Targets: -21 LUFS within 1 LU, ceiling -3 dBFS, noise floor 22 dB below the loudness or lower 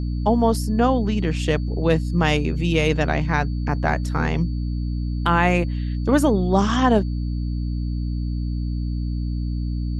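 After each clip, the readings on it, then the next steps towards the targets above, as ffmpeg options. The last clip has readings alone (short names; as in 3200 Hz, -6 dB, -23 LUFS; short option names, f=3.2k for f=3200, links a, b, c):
hum 60 Hz; harmonics up to 300 Hz; hum level -22 dBFS; steady tone 4500 Hz; tone level -51 dBFS; loudness -22.0 LUFS; peak -3.5 dBFS; loudness target -21.0 LUFS
-> -af "bandreject=f=60:t=h:w=4,bandreject=f=120:t=h:w=4,bandreject=f=180:t=h:w=4,bandreject=f=240:t=h:w=4,bandreject=f=300:t=h:w=4"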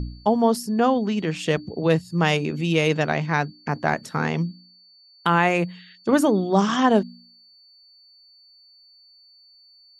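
hum none; steady tone 4500 Hz; tone level -51 dBFS
-> -af "bandreject=f=4.5k:w=30"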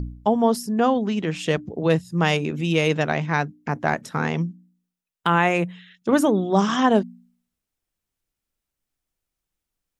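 steady tone none; loudness -22.0 LUFS; peak -5.0 dBFS; loudness target -21.0 LUFS
-> -af "volume=1dB"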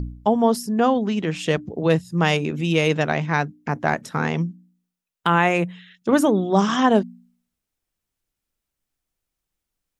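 loudness -21.0 LUFS; peak -4.0 dBFS; noise floor -84 dBFS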